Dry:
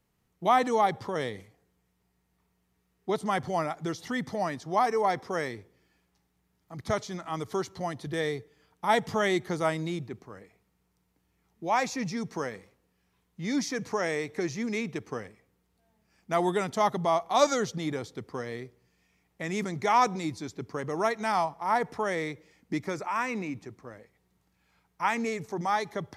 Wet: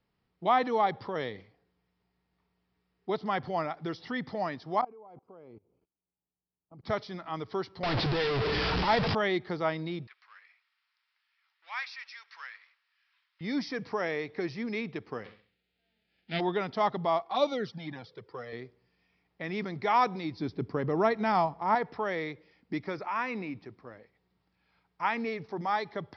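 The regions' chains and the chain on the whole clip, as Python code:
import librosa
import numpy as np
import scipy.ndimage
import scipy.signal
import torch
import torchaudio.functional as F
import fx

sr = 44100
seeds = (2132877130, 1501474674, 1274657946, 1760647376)

y = fx.chain(x, sr, fx.low_shelf(hz=170.0, db=-3.0),
    fx.level_steps(step_db=23),
    fx.moving_average(points=24), at=(4.81, 6.84))
y = fx.chain(y, sr, fx.delta_mod(bps=32000, step_db=-21.0),
    fx.low_shelf(hz=110.0, db=9.5), at=(7.83, 9.15))
y = fx.chain(y, sr, fx.law_mismatch(coded='mu'),
    fx.highpass(hz=1400.0, slope=24),
    fx.high_shelf(hz=6200.0, db=-10.0), at=(10.07, 13.41))
y = fx.envelope_flatten(y, sr, power=0.3, at=(15.24, 16.39), fade=0.02)
y = fx.fixed_phaser(y, sr, hz=2600.0, stages=4, at=(15.24, 16.39), fade=0.02)
y = fx.room_flutter(y, sr, wall_m=11.3, rt60_s=0.39, at=(15.24, 16.39), fade=0.02)
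y = fx.chain(y, sr, fx.env_flanger(rest_ms=3.0, full_db=-20.0),
    fx.highpass(hz=110.0, slope=12), at=(17.22, 18.53))
y = fx.chain(y, sr, fx.low_shelf(hz=490.0, db=10.0),
    fx.quant_float(bits=8), at=(20.39, 21.75))
y = scipy.signal.sosfilt(scipy.signal.butter(16, 5300.0, 'lowpass', fs=sr, output='sos'), y)
y = fx.low_shelf(y, sr, hz=150.0, db=-4.0)
y = y * 10.0 ** (-2.0 / 20.0)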